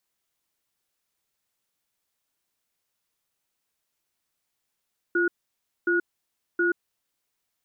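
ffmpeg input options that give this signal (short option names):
-f lavfi -i "aevalsrc='0.075*(sin(2*PI*347*t)+sin(2*PI*1450*t))*clip(min(mod(t,0.72),0.13-mod(t,0.72))/0.005,0,1)':d=1.6:s=44100"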